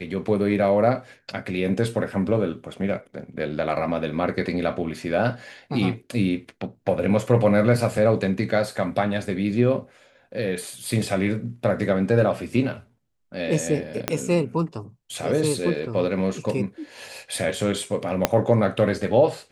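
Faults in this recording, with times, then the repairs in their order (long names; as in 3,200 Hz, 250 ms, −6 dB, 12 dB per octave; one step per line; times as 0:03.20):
0:14.08: click −6 dBFS
0:18.25: click −2 dBFS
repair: click removal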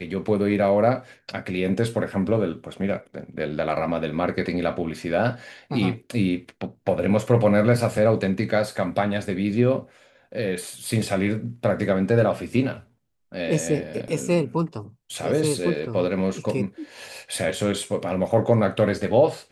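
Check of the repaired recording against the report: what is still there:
0:14.08: click
0:18.25: click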